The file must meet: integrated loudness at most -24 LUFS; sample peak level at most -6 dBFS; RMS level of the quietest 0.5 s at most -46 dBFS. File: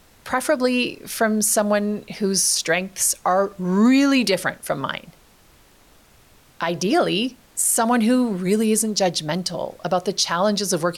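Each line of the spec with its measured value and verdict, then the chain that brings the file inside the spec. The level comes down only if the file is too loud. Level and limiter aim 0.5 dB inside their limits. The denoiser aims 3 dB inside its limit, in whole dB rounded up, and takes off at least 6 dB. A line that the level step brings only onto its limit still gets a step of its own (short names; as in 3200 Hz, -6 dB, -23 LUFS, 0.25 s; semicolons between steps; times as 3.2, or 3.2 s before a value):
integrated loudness -20.5 LUFS: fail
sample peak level -8.0 dBFS: OK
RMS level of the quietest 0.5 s -53 dBFS: OK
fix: gain -4 dB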